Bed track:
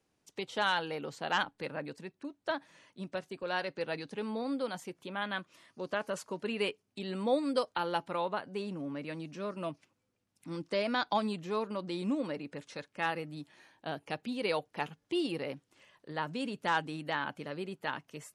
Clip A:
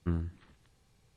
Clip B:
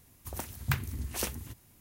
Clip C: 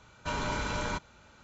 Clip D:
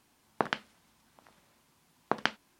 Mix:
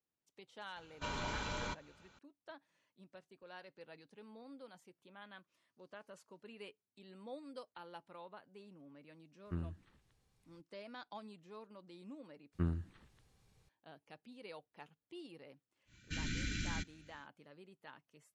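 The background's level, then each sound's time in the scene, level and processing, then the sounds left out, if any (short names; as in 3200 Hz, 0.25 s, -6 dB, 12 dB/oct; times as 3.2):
bed track -19 dB
0.76 add C -8.5 dB + bell 3400 Hz +4 dB 0.95 oct
9.45 add A -9 dB
12.53 replace with A -3.5 dB
15.85 add C -3.5 dB, fades 0.10 s + elliptic band-stop 320–1700 Hz
not used: B, D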